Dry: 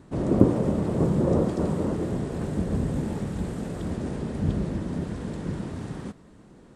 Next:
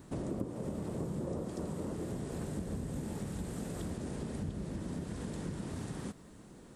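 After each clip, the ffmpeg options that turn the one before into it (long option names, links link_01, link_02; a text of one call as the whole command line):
ffmpeg -i in.wav -af "aemphasis=mode=production:type=50kf,acompressor=threshold=-33dB:ratio=5,volume=-3dB" out.wav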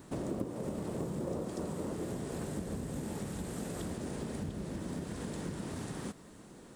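ffmpeg -i in.wav -filter_complex "[0:a]lowshelf=frequency=180:gain=-6.5,asplit=2[link_01][link_02];[link_02]acrusher=bits=3:mode=log:mix=0:aa=0.000001,volume=-12dB[link_03];[link_01][link_03]amix=inputs=2:normalize=0,volume=1dB" out.wav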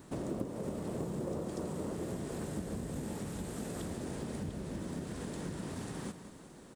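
ffmpeg -i in.wav -af "aecho=1:1:185|370|555|740|925|1110|1295:0.224|0.134|0.0806|0.0484|0.029|0.0174|0.0104,volume=-1dB" out.wav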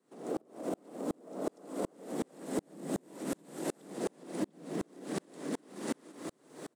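ffmpeg -i in.wav -af "afreqshift=110,acompressor=threshold=-39dB:ratio=6,aeval=exprs='val(0)*pow(10,-38*if(lt(mod(-2.7*n/s,1),2*abs(-2.7)/1000),1-mod(-2.7*n/s,1)/(2*abs(-2.7)/1000),(mod(-2.7*n/s,1)-2*abs(-2.7)/1000)/(1-2*abs(-2.7)/1000))/20)':channel_layout=same,volume=13dB" out.wav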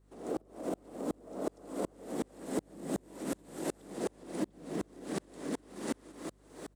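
ffmpeg -i in.wav -af "aeval=exprs='val(0)+0.000631*(sin(2*PI*50*n/s)+sin(2*PI*2*50*n/s)/2+sin(2*PI*3*50*n/s)/3+sin(2*PI*4*50*n/s)/4+sin(2*PI*5*50*n/s)/5)':channel_layout=same" out.wav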